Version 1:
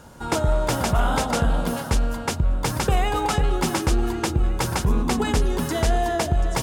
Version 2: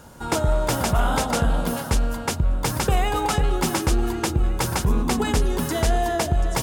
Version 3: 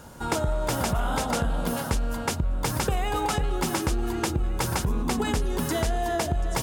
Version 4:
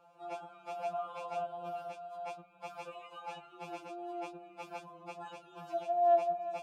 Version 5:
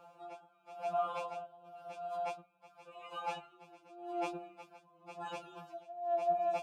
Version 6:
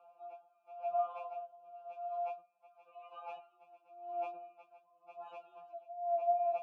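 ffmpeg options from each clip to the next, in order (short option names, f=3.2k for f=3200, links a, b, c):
-af "highshelf=f=11k:g=6.5"
-af "acompressor=threshold=-22dB:ratio=6"
-filter_complex "[0:a]asplit=3[a][b][c];[a]bandpass=f=730:t=q:w=8,volume=0dB[d];[b]bandpass=f=1.09k:t=q:w=8,volume=-6dB[e];[c]bandpass=f=2.44k:t=q:w=8,volume=-9dB[f];[d][e][f]amix=inputs=3:normalize=0,afftfilt=real='re*2.83*eq(mod(b,8),0)':imag='im*2.83*eq(mod(b,8),0)':win_size=2048:overlap=0.75"
-af "aeval=exprs='val(0)*pow(10,-21*(0.5-0.5*cos(2*PI*0.93*n/s))/20)':c=same,volume=6dB"
-filter_complex "[0:a]asplit=3[a][b][c];[a]bandpass=f=730:t=q:w=8,volume=0dB[d];[b]bandpass=f=1.09k:t=q:w=8,volume=-6dB[e];[c]bandpass=f=2.44k:t=q:w=8,volume=-9dB[f];[d][e][f]amix=inputs=3:normalize=0,volume=2dB"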